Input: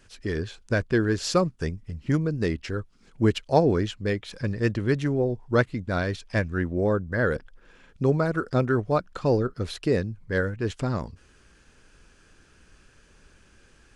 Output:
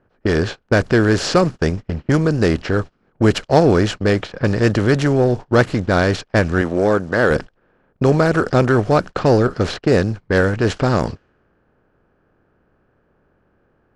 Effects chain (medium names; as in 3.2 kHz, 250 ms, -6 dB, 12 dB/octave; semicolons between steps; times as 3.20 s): spectral levelling over time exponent 0.6; gate -30 dBFS, range -26 dB; level-controlled noise filter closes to 1.3 kHz, open at -17 dBFS; 6.61–7.31 s: high-pass 240 Hz 6 dB/octave; in parallel at -9 dB: overload inside the chain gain 17.5 dB; on the sum: trim +3.5 dB